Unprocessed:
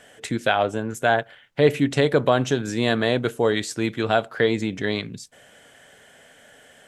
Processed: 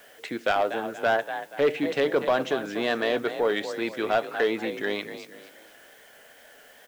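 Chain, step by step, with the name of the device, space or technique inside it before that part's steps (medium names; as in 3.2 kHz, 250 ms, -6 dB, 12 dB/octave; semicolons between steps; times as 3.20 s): frequency-shifting echo 239 ms, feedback 35%, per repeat +37 Hz, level -12 dB; tape answering machine (band-pass 340–3400 Hz; saturation -13.5 dBFS, distortion -16 dB; wow and flutter; white noise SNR 30 dB); trim -1 dB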